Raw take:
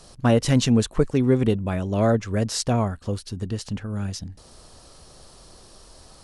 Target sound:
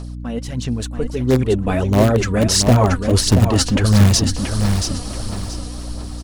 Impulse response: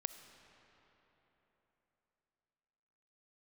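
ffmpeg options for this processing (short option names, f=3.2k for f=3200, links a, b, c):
-filter_complex "[0:a]areverse,acompressor=threshold=-31dB:ratio=8,areverse,aphaser=in_gain=1:out_gain=1:delay=4.2:decay=0.56:speed=1.5:type=sinusoidal,dynaudnorm=f=260:g=11:m=15dB,aeval=exprs='val(0)+0.0224*(sin(2*PI*60*n/s)+sin(2*PI*2*60*n/s)/2+sin(2*PI*3*60*n/s)/3+sin(2*PI*4*60*n/s)/4+sin(2*PI*5*60*n/s)/5)':c=same,asplit=2[a][b];[b]aeval=exprs='(mod(3.35*val(0)+1,2)-1)/3.35':c=same,volume=-10dB[c];[a][c]amix=inputs=2:normalize=0,aecho=1:1:680|1360|2040:0.473|0.123|0.032,volume=2.5dB"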